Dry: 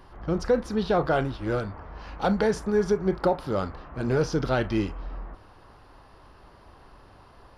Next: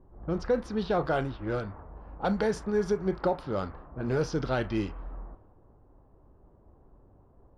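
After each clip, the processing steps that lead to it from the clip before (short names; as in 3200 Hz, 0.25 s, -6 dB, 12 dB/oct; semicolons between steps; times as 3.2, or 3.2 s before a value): low-pass opened by the level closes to 440 Hz, open at -20 dBFS; gain -4 dB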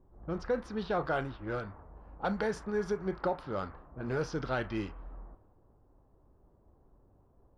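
dynamic EQ 1500 Hz, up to +5 dB, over -44 dBFS, Q 0.73; gain -6 dB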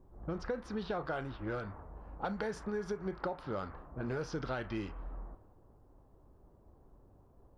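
compressor 4:1, threshold -37 dBFS, peak gain reduction 10 dB; gain +2.5 dB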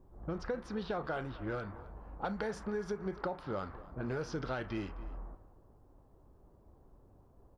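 outdoor echo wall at 45 m, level -18 dB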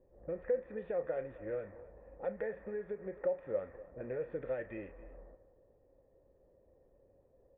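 vocal tract filter e; gain +9 dB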